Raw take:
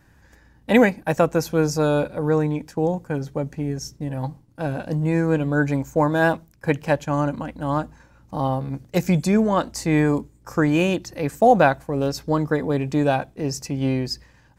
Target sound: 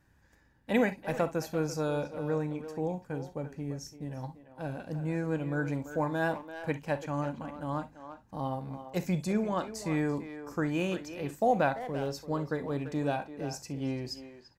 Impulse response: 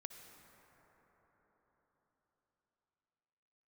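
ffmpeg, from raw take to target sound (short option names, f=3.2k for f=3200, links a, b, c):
-filter_complex "[0:a]asplit=2[a][b];[b]adelay=340,highpass=300,lowpass=3.4k,asoftclip=type=hard:threshold=-13.5dB,volume=-10dB[c];[a][c]amix=inputs=2:normalize=0[d];[1:a]atrim=start_sample=2205,afade=t=out:st=0.18:d=0.01,atrim=end_sample=8379,asetrate=83790,aresample=44100[e];[d][e]afir=irnorm=-1:irlink=0"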